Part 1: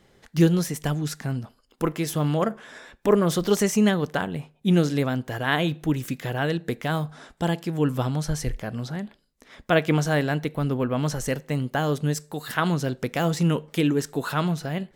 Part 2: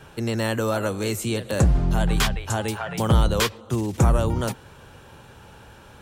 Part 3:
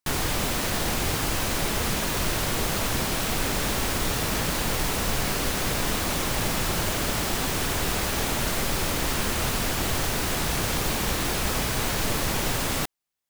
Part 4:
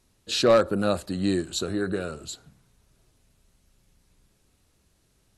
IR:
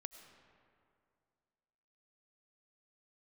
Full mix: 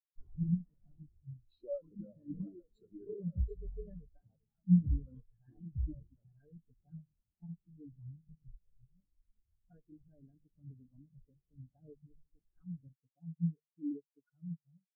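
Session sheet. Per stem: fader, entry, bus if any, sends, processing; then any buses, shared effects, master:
-12.0 dB, 0.00 s, no send, comb 6.9 ms, depth 95%; limiter -12 dBFS, peak gain reduction 10 dB
-14.0 dB, 1.75 s, send -9 dB, dry
-2.5 dB, 0.10 s, no send, auto duck -7 dB, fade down 1.55 s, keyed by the first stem
+0.5 dB, 1.20 s, no send, compressor 6:1, threshold -30 dBFS, peak gain reduction 14.5 dB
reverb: on, RT60 2.3 s, pre-delay 60 ms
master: notches 50/100/150 Hz; spectral expander 4:1

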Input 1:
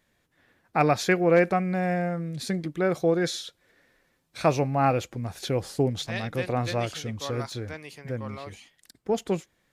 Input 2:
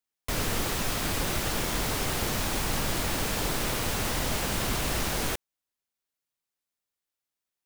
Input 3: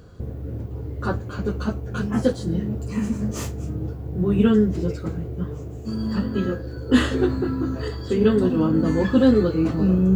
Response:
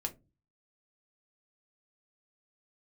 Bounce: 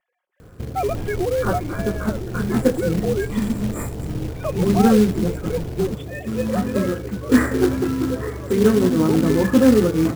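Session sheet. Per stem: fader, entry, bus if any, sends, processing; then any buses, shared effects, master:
-1.5 dB, 0.00 s, bus A, no send, no echo send, sine-wave speech; LPF 2100 Hz 6 dB/oct; comb 5.5 ms, depth 58%
+1.0 dB, 0.60 s, bus A, no send, no echo send, inverse Chebyshev low-pass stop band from 2900 Hz, stop band 60 dB; notches 60/120/180/240 Hz; auto duck -11 dB, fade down 1.80 s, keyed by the first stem
+2.5 dB, 0.40 s, no bus, no send, echo send -17.5 dB, FFT band-reject 2500–7100 Hz; bell 63 Hz -4 dB 0.82 oct
bus A: 0.0 dB, low shelf 370 Hz +8.5 dB; limiter -16 dBFS, peak gain reduction 11.5 dB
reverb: off
echo: echo 80 ms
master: short-mantissa float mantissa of 2-bit

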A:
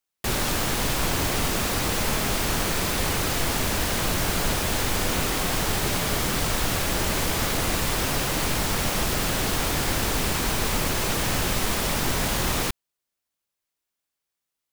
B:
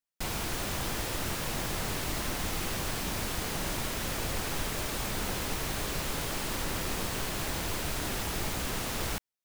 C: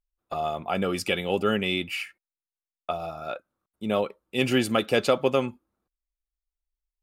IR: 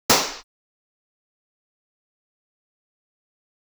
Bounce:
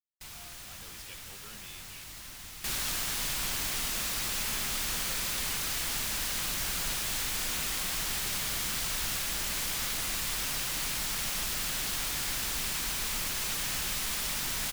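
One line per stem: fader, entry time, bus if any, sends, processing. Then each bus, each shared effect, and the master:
+2.0 dB, 2.40 s, no send, bell 88 Hz -9 dB 0.76 oct
-2.0 dB, 0.00 s, no send, dry
-13.5 dB, 0.00 s, no send, dry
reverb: off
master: gate with hold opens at -28 dBFS; passive tone stack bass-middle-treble 5-5-5

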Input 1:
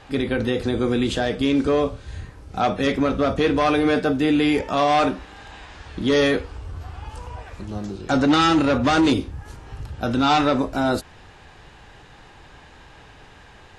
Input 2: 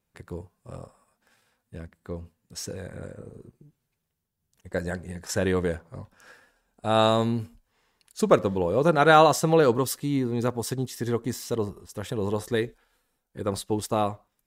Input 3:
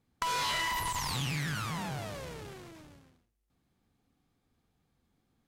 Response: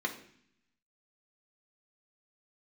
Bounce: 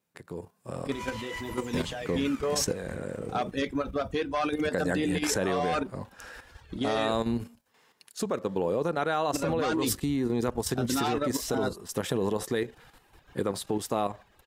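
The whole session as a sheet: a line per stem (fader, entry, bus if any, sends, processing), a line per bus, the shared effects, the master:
-5.5 dB, 0.75 s, muted 7.42–9.33, no bus, no send, reverb removal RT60 1.5 s
+1.5 dB, 0.00 s, bus A, no send, AGC gain up to 10.5 dB
-4.0 dB, 0.70 s, bus A, send -6 dB, dry
bus A: 0.0 dB, HPF 150 Hz 12 dB/oct; compressor 3:1, threshold -23 dBFS, peak gain reduction 13 dB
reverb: on, RT60 0.60 s, pre-delay 3 ms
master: level quantiser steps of 9 dB

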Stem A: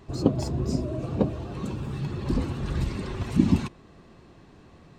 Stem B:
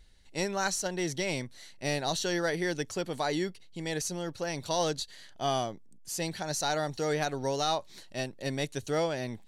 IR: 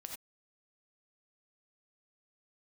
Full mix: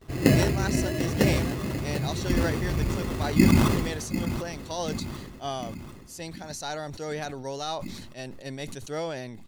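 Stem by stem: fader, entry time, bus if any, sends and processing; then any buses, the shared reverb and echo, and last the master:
+0.5 dB, 0.00 s, no send, echo send -10.5 dB, gate with hold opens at -43 dBFS; tone controls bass -1 dB, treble -6 dB; sample-and-hold 19×
-2.5 dB, 0.00 s, no send, no echo send, upward expander 1.5:1, over -45 dBFS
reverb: off
echo: feedback echo 0.744 s, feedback 53%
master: sustainer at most 37 dB/s

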